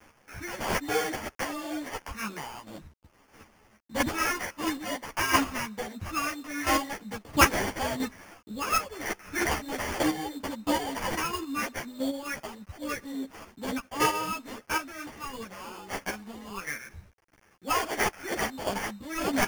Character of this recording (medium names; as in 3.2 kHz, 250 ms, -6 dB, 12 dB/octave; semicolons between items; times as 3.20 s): a quantiser's noise floor 10-bit, dither none; chopped level 1.5 Hz, depth 60%, duty 15%; aliases and images of a low sample rate 3.9 kHz, jitter 0%; a shimmering, thickened sound